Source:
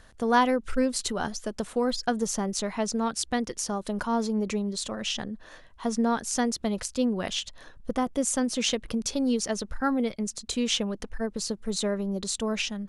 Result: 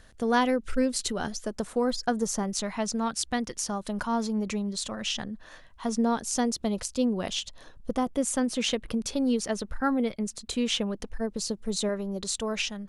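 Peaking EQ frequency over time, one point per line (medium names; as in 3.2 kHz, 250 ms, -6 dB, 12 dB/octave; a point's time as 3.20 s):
peaking EQ -4.5 dB 0.96 oct
1 kHz
from 1.44 s 3 kHz
from 2.43 s 410 Hz
from 5.89 s 1.7 kHz
from 8.10 s 6 kHz
from 11.00 s 1.5 kHz
from 11.89 s 240 Hz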